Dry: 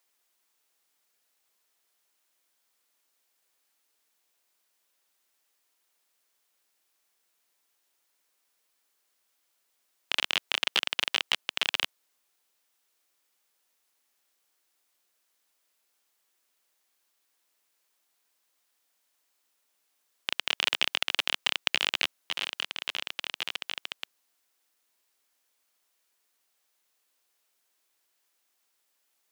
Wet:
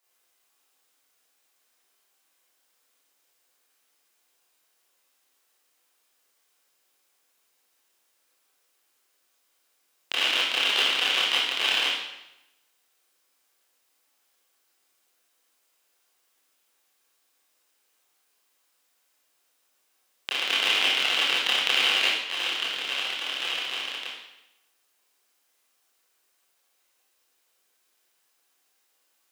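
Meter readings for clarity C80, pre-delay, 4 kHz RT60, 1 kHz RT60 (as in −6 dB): 3.5 dB, 22 ms, 0.85 s, 0.85 s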